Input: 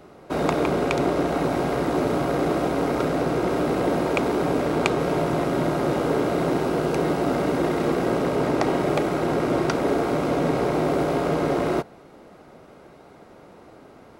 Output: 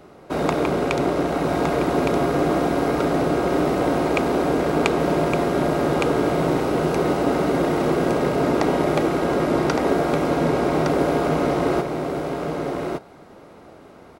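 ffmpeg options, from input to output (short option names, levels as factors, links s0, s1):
-af "aecho=1:1:1163:0.596,volume=1.12"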